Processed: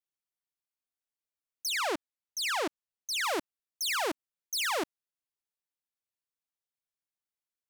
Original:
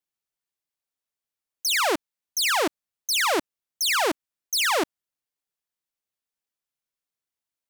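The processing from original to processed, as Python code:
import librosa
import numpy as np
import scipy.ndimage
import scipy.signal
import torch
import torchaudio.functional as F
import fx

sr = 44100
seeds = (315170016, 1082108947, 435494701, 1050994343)

y = fx.high_shelf(x, sr, hz=12000.0, db=-9.5, at=(1.69, 3.24))
y = y * 10.0 ** (-8.0 / 20.0)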